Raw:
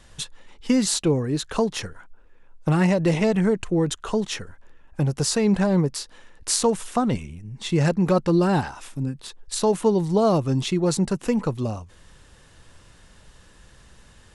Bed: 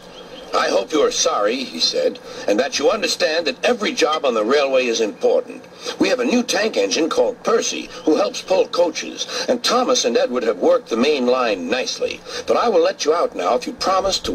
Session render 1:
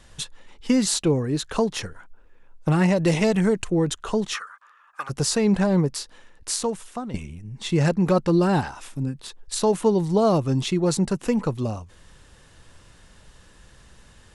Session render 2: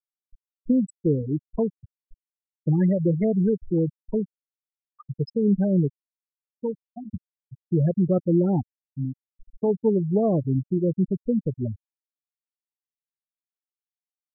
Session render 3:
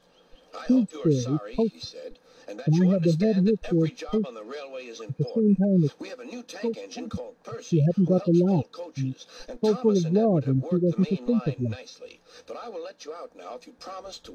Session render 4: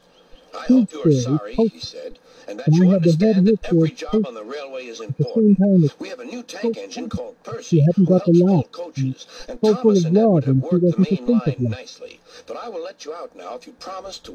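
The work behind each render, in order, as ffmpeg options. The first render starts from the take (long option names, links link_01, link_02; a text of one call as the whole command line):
ffmpeg -i in.wav -filter_complex "[0:a]asettb=1/sr,asplit=3[link_01][link_02][link_03];[link_01]atrim=end=2.964[link_04];[link_02]atrim=start=2.96:end=3.7,asetpts=PTS-STARTPTS,afade=type=in:duration=0.004:curve=qsin,afade=type=out:start_time=0.736:duration=0.004:curve=qsin,highshelf=frequency=3600:gain=7[link_05];[link_03]atrim=start=3.696[link_06];[link_04][link_05]acrossfade=duration=0.004:curve1=hsin:curve2=qsin[link_07];[link_07][link_06]acrossfade=duration=0.004:curve1=qsin:curve2=hsin,asplit=3[link_08][link_09][link_10];[link_08]afade=type=out:start_time=4.33:duration=0.02[link_11];[link_09]highpass=frequency=1200:width_type=q:width=14,afade=type=in:start_time=4.33:duration=0.02,afade=type=out:start_time=5.09:duration=0.02[link_12];[link_10]afade=type=in:start_time=5.09:duration=0.02[link_13];[link_11][link_12][link_13]amix=inputs=3:normalize=0,asplit=2[link_14][link_15];[link_14]atrim=end=7.14,asetpts=PTS-STARTPTS,afade=type=out:start_time=5.97:duration=1.17:silence=0.237137[link_16];[link_15]atrim=start=7.14,asetpts=PTS-STARTPTS,afade=type=in:duration=0.004:curve=hsin:silence=0.237137[link_17];[link_16][link_17]concat=n=2:v=0:a=1" out.wav
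ffmpeg -i in.wav -af "afftfilt=real='re*gte(hypot(re,im),0.282)':imag='im*gte(hypot(re,im),0.282)':win_size=1024:overlap=0.75,equalizer=frequency=1100:width=1.5:gain=-14.5" out.wav
ffmpeg -i in.wav -i bed.wav -filter_complex "[1:a]volume=-21.5dB[link_01];[0:a][link_01]amix=inputs=2:normalize=0" out.wav
ffmpeg -i in.wav -af "volume=6.5dB" out.wav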